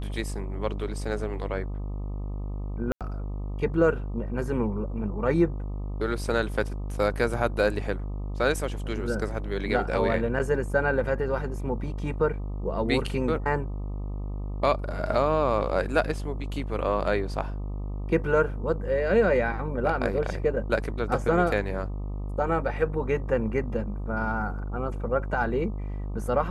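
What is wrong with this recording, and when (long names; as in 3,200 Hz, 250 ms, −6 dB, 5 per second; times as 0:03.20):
mains buzz 50 Hz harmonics 25 −32 dBFS
0:02.92–0:03.01: drop-out 87 ms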